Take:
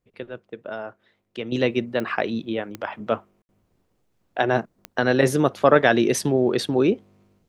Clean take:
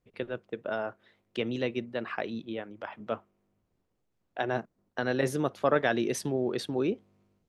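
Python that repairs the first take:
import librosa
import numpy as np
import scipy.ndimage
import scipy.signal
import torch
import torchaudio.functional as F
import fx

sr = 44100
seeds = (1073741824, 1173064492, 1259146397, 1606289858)

y = fx.fix_declick_ar(x, sr, threshold=10.0)
y = fx.fix_ambience(y, sr, seeds[0], print_start_s=0.87, print_end_s=1.37, start_s=3.42, end_s=3.49)
y = fx.gain(y, sr, db=fx.steps((0.0, 0.0), (1.52, -9.5)))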